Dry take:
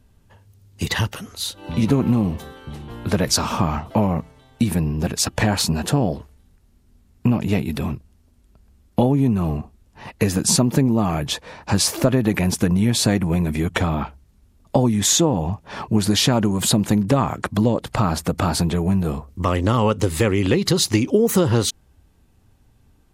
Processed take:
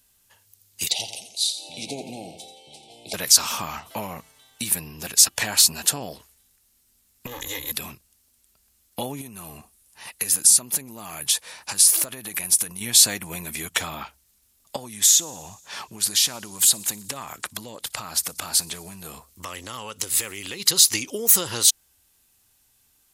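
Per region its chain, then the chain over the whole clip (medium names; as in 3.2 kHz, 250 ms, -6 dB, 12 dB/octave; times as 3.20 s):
0.90–3.14 s: Chebyshev band-stop 810–2200 Hz, order 4 + cabinet simulation 160–8700 Hz, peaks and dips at 210 Hz -6 dB, 670 Hz +9 dB, 960 Hz +5 dB, 1.8 kHz -10 dB, 2.9 kHz -4 dB, 6.6 kHz -6 dB + feedback delay 86 ms, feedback 39%, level -10.5 dB
7.26–7.72 s: comb filter that takes the minimum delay 2.4 ms + rippled EQ curve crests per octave 1.1, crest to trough 14 dB + compression 5:1, threshold -20 dBFS
9.21–12.81 s: peaking EQ 10 kHz +9 dB 0.45 oct + compression 4:1, threshold -22 dBFS
14.76–20.60 s: compression 2.5:1, threshold -23 dBFS + feedback echo behind a high-pass 60 ms, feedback 76%, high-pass 5.1 kHz, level -23 dB
whole clip: pre-emphasis filter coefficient 0.97; loudness maximiser +11 dB; trim -1 dB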